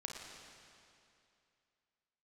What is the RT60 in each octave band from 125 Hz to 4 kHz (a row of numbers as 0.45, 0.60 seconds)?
2.5, 2.6, 2.6, 2.6, 2.5, 2.4 seconds